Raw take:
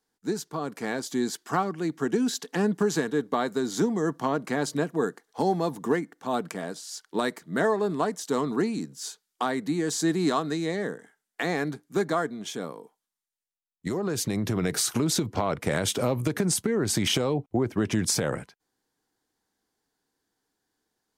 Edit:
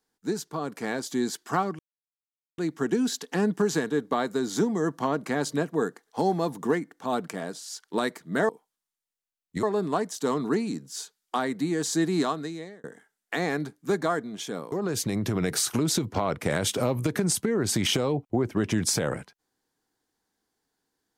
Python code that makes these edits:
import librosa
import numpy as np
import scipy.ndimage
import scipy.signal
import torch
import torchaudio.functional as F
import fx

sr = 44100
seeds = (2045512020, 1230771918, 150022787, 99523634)

y = fx.edit(x, sr, fx.insert_silence(at_s=1.79, length_s=0.79),
    fx.fade_out_span(start_s=10.23, length_s=0.68),
    fx.move(start_s=12.79, length_s=1.14, to_s=7.7), tone=tone)